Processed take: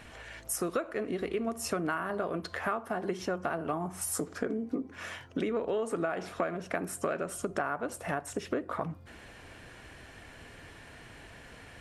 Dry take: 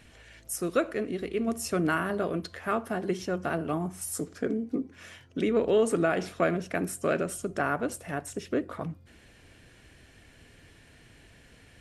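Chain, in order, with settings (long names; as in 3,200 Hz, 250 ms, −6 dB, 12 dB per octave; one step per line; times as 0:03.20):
parametric band 970 Hz +9 dB 1.8 octaves
downward compressor 6 to 1, threshold −32 dBFS, peak gain reduction 16.5 dB
level +2.5 dB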